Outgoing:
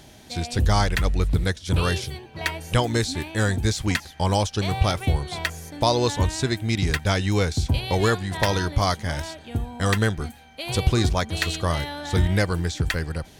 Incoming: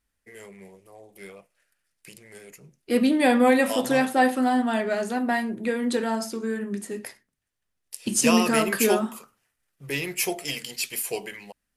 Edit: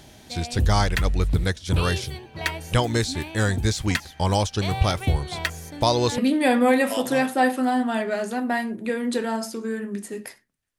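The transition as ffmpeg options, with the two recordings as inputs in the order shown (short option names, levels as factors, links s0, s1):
-filter_complex "[1:a]asplit=2[s0][s1];[0:a]apad=whole_dur=10.78,atrim=end=10.78,atrim=end=6.182[s2];[s1]atrim=start=2.968:end=7.57[s3];[s0]atrim=start=2.57:end=2.97,asetpts=PTS-STARTPTS,volume=0.282,afade=t=in:d=0.004:c=hsin,afade=t=out:st=0.396:d=0.004:c=hsin,adelay=5780[s4];[s2][s3]acrossfade=d=0.004:c1=hsin:c2=hsin[s5];[s5][s4]amix=inputs=2:normalize=0"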